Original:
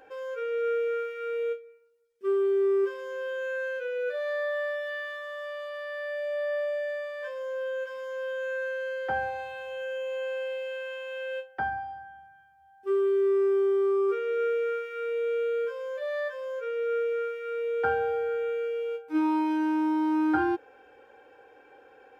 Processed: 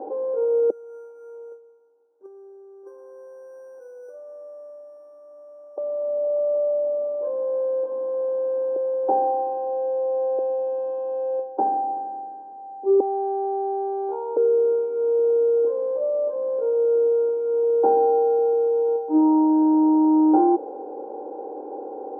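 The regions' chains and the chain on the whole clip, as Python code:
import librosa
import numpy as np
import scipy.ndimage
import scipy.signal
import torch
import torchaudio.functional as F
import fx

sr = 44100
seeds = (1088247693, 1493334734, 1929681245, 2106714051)

y = fx.chain(x, sr, fx.over_compress(threshold_db=-29.0, ratio=-0.5),
    fx.bandpass_q(hz=1500.0, q=16.0),
    fx.resample_bad(factor=6, down='none', up='zero_stuff'), at=(0.7, 5.78))
y = fx.chain(y, sr, fx.highpass(hz=390.0, slope=12),
    fx.tilt_eq(slope=-2.0), at=(8.76, 10.39))
y = fx.chain(y, sr, fx.lower_of_two(delay_ms=0.53),
    fx.highpass(hz=1100.0, slope=12), at=(13.0, 14.37))
y = fx.bin_compress(y, sr, power=0.6)
y = scipy.signal.sosfilt(scipy.signal.ellip(3, 1.0, 40, [230.0, 860.0], 'bandpass', fs=sr, output='sos'), y)
y = y * librosa.db_to_amplitude(8.5)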